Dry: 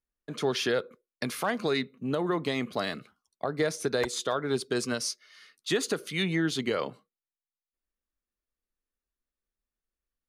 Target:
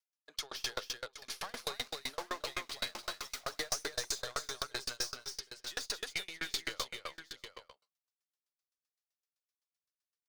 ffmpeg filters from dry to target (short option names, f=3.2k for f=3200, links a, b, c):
-filter_complex "[0:a]asettb=1/sr,asplit=3[a][b][c];[a]atrim=end=1.514[d];[b]atrim=start=1.51:end=3.86,asetpts=PTS-STARTPTS,afade=t=in:d=0.004:c=qsin,afade=t=out:st=2.346:d=0.004:c=qsin,aeval=exprs='val(0)+0.5*0.0168*sgn(val(0))':c=same[e];[c]atrim=start=3.856[f];[d][e]acrossfade=d=0.004:c1=hsin:c2=qsin[g];[g][f]acrossfade=d=0.004:c1=qsin:c2=hsin,highpass=790,equalizer=f=5.2k:t=o:w=1.1:g=10,aeval=exprs='0.251*(cos(1*acos(clip(val(0)/0.251,-1,1)))-cos(1*PI/2))+0.0562*(cos(4*acos(clip(val(0)/0.251,-1,1)))-cos(4*PI/2))':c=same,asoftclip=type=hard:threshold=-25dB,aecho=1:1:48|189|271|625|755|879:0.141|0.133|0.668|0.112|0.316|0.158,aeval=exprs='val(0)*pow(10,-33*if(lt(mod(7.8*n/s,1),2*abs(7.8)/1000),1-mod(7.8*n/s,1)/(2*abs(7.8)/1000),(mod(7.8*n/s,1)-2*abs(7.8)/1000)/(1-2*abs(7.8)/1000))/20)':c=same"